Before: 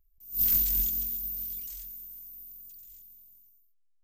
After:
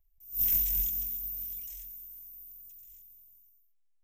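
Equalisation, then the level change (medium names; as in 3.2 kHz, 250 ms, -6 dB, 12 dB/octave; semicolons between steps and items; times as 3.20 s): peaking EQ 700 Hz +4 dB 0.75 oct; peaking EQ 5.2 kHz +14.5 dB 0.54 oct; static phaser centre 1.3 kHz, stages 6; -2.0 dB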